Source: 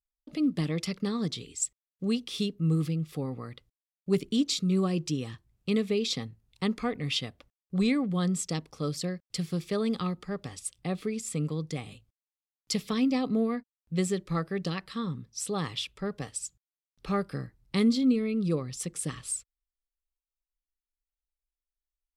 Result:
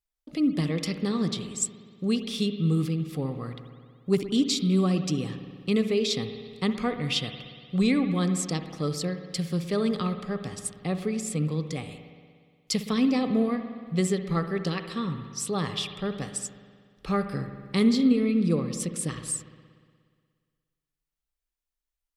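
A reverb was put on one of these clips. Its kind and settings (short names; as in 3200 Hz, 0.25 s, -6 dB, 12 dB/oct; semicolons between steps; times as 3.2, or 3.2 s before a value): spring tank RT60 1.9 s, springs 59 ms, chirp 60 ms, DRR 8 dB; gain +2.5 dB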